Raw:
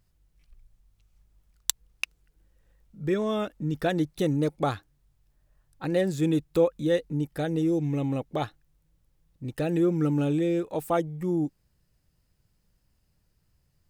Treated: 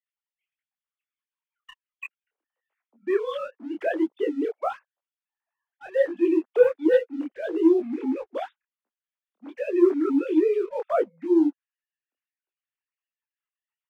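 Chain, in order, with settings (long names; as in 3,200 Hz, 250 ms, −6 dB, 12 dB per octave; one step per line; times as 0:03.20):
three sine waves on the formant tracks
Butterworth high-pass 270 Hz 36 dB per octave, from 0:04.48 530 Hz, from 0:06.07 250 Hz
leveller curve on the samples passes 1
micro pitch shift up and down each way 50 cents
level +3.5 dB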